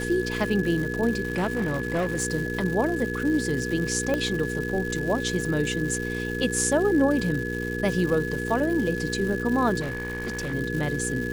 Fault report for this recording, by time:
crackle 340 per s -31 dBFS
hum 60 Hz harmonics 8 -31 dBFS
whine 1.7 kHz -32 dBFS
1.23–2.25 s: clipped -21 dBFS
4.14 s: pop -13 dBFS
9.80–10.54 s: clipped -26.5 dBFS

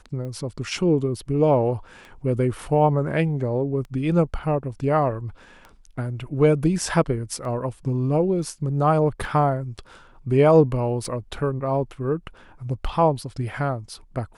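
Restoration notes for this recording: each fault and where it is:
tick 33 1/3 rpm -26 dBFS

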